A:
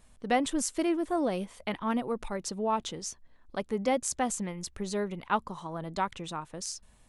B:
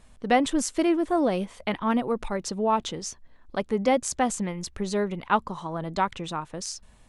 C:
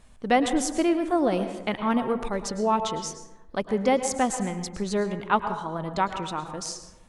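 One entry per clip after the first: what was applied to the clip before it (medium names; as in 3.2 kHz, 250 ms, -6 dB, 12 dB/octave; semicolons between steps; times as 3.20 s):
treble shelf 9.9 kHz -11 dB; trim +5.5 dB
plate-style reverb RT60 0.96 s, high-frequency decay 0.4×, pre-delay 95 ms, DRR 8.5 dB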